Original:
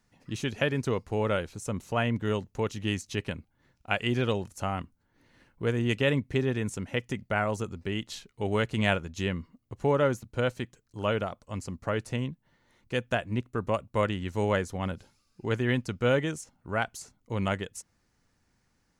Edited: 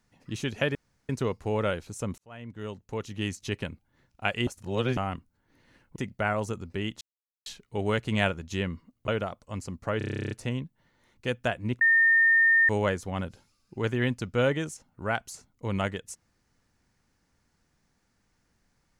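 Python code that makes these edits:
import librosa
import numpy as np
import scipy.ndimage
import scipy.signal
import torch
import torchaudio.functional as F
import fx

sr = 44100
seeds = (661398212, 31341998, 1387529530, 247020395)

y = fx.edit(x, sr, fx.insert_room_tone(at_s=0.75, length_s=0.34),
    fx.fade_in_span(start_s=1.84, length_s=1.27),
    fx.reverse_span(start_s=4.13, length_s=0.5),
    fx.cut(start_s=5.62, length_s=1.45),
    fx.insert_silence(at_s=8.12, length_s=0.45),
    fx.cut(start_s=9.74, length_s=1.34),
    fx.stutter(start_s=11.98, slice_s=0.03, count=12),
    fx.bleep(start_s=13.48, length_s=0.88, hz=1820.0, db=-17.0), tone=tone)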